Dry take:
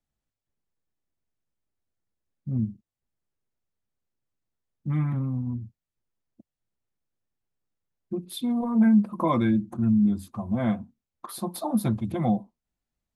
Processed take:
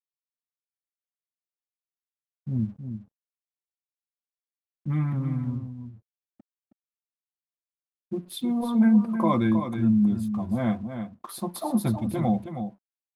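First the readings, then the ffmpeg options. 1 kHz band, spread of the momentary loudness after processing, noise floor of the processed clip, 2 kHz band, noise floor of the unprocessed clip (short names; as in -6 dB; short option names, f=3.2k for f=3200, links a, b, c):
+0.5 dB, 17 LU, under -85 dBFS, +0.5 dB, under -85 dBFS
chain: -af "aeval=exprs='sgn(val(0))*max(abs(val(0))-0.00133,0)':c=same,aecho=1:1:318:0.376"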